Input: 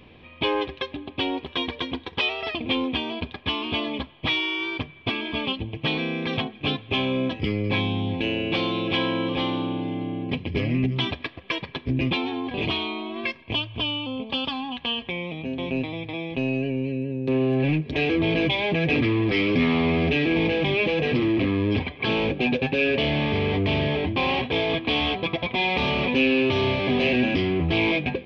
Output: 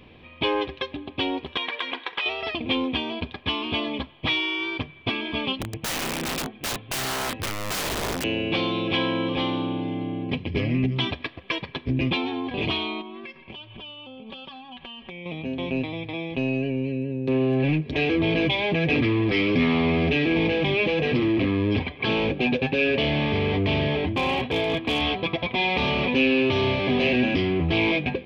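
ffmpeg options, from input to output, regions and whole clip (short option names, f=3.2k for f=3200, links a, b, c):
-filter_complex "[0:a]asettb=1/sr,asplit=3[a][b][c];[a]atrim=end=1.574[d];[b]atrim=start=1.57:end=2.26,asetpts=PTS-STARTPTS,afade=t=in:d=0.004:c=qsin,afade=t=out:st=0.686:d=0.004:c=qsin,highpass=420,equalizer=f=1.7k:w=0.57:g=12.5,acompressor=threshold=-24dB:ratio=10:attack=3.2:release=140:knee=1:detection=peak[e];[c]atrim=start=2.256[f];[d][e]acrossfade=d=0.004:c1=hsin:c2=qsin[g];[g][f]acrossfade=d=0.004:c1=qsin:c2=hsin,asettb=1/sr,asplit=3[h][i][j];[h]atrim=end=5.614[k];[i]atrim=start=5.61:end=8.24,asetpts=PTS-STARTPTS,afade=t=in:d=0.004:c=qsin,afade=t=out:st=2.626:d=0.004:c=qsin,lowpass=f=2.5k:p=1,aeval=exprs='(mod(14.1*val(0)+1,2)-1)/14.1':c=same[l];[j]atrim=start=8.236[m];[k][l]acrossfade=d=0.004:c1=hsin:c2=qsin[n];[n][m]acrossfade=d=0.004:c1=qsin:c2=hsin,asettb=1/sr,asplit=3[o][p][q];[o]atrim=end=13.014[r];[p]atrim=start=13.01:end=15.26,asetpts=PTS-STARTPTS,afade=t=in:d=0.004:c=qsin,afade=t=out:st=2.246:d=0.004:c=qsin,lowpass=4.4k,acompressor=threshold=-37dB:ratio=16:attack=3.2:release=140:knee=1:detection=peak,aecho=1:1:5.3:0.68,atrim=end_sample=99225[s];[q]atrim=start=15.256[t];[r][s]acrossfade=d=0.004:c1=hsin:c2=qsin[u];[u][t]acrossfade=d=0.004:c1=qsin:c2=hsin,asettb=1/sr,asplit=3[v][w][x];[v]atrim=end=24.084[y];[w]atrim=start=24.08:end=25.01,asetpts=PTS-STARTPTS,afade=t=in:d=0.004:c=qsin,afade=t=out:st=0.926:d=0.004:c=qsin,highshelf=f=2.2k:g=-2.5,asoftclip=type=hard:threshold=-17.5dB[z];[x]atrim=start=25.006[aa];[y][z]acrossfade=d=0.004:c1=hsin:c2=qsin[ab];[ab][aa]acrossfade=d=0.004:c1=qsin:c2=hsin"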